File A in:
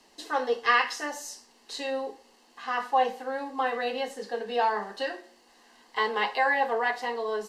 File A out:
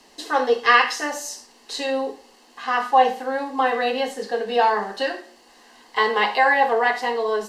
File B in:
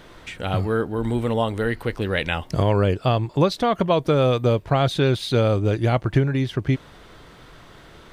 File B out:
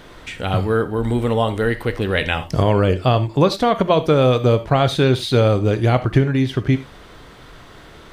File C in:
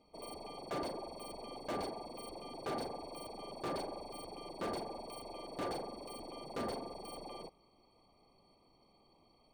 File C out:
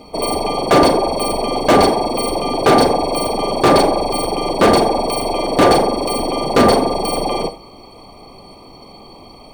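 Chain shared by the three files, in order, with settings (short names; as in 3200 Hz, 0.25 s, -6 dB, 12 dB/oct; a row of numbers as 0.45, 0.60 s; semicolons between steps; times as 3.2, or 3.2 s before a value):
non-linear reverb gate 0.11 s flat, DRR 11 dB; normalise peaks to -2 dBFS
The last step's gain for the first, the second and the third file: +7.0, +3.5, +28.0 dB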